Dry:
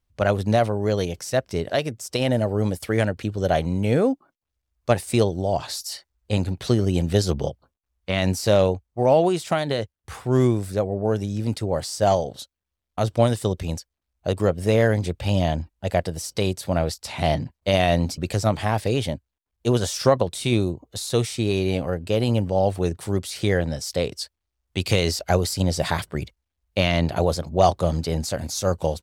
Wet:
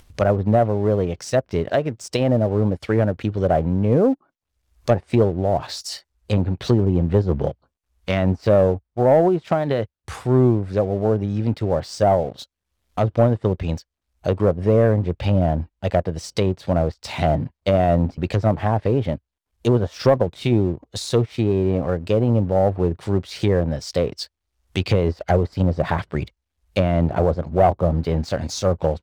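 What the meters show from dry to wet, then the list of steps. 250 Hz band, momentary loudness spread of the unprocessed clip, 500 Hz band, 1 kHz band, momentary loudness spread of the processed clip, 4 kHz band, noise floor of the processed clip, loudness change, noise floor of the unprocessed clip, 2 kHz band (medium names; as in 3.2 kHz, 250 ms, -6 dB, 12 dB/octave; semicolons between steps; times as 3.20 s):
+3.0 dB, 10 LU, +3.0 dB, +1.5 dB, 9 LU, -4.5 dB, -81 dBFS, +2.5 dB, -83 dBFS, -2.5 dB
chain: upward compressor, threshold -32 dBFS; low-pass that closes with the level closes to 1 kHz, closed at -17.5 dBFS; waveshaping leveller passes 1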